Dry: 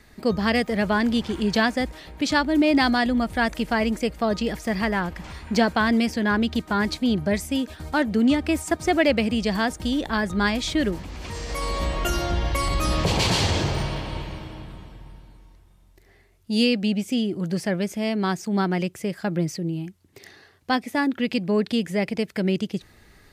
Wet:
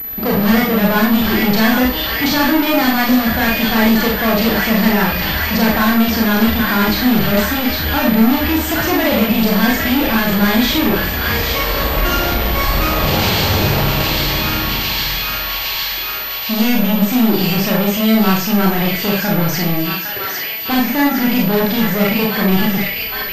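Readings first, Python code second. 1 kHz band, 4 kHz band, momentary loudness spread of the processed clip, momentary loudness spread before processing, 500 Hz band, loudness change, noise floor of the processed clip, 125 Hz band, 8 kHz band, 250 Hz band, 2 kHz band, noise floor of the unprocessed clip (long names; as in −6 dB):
+8.5 dB, +11.0 dB, 5 LU, 10 LU, +6.5 dB, +9.0 dB, −23 dBFS, +9.0 dB, +8.0 dB, +9.0 dB, +9.5 dB, −55 dBFS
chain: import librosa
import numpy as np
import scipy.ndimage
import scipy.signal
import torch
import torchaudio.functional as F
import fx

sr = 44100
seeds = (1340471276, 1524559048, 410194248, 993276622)

y = fx.echo_wet_highpass(x, sr, ms=807, feedback_pct=68, hz=1600.0, wet_db=-7.0)
y = 10.0 ** (-13.0 / 20.0) * np.tanh(y / 10.0 ** (-13.0 / 20.0))
y = fx.leveller(y, sr, passes=5)
y = fx.rev_schroeder(y, sr, rt60_s=0.39, comb_ms=28, drr_db=-2.5)
y = fx.pwm(y, sr, carrier_hz=12000.0)
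y = y * librosa.db_to_amplitude(-3.0)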